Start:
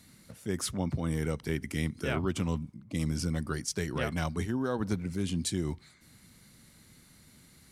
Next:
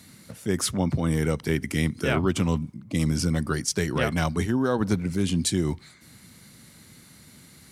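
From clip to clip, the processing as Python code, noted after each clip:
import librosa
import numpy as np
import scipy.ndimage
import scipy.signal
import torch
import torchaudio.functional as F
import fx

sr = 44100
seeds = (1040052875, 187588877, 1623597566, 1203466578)

y = scipy.signal.sosfilt(scipy.signal.butter(2, 73.0, 'highpass', fs=sr, output='sos'), x)
y = y * 10.0 ** (7.5 / 20.0)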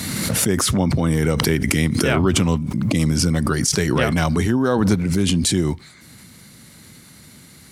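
y = fx.pre_swell(x, sr, db_per_s=23.0)
y = y * 10.0 ** (5.0 / 20.0)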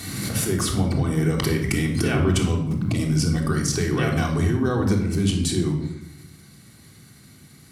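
y = fx.room_shoebox(x, sr, seeds[0], volume_m3=2300.0, walls='furnished', distance_m=3.5)
y = y * 10.0 ** (-8.5 / 20.0)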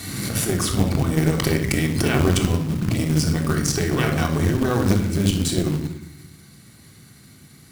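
y = fx.cheby_harmonics(x, sr, harmonics=(2,), levels_db=(-7,), full_scale_db=-9.0)
y = fx.quant_float(y, sr, bits=2)
y = y * 10.0 ** (1.0 / 20.0)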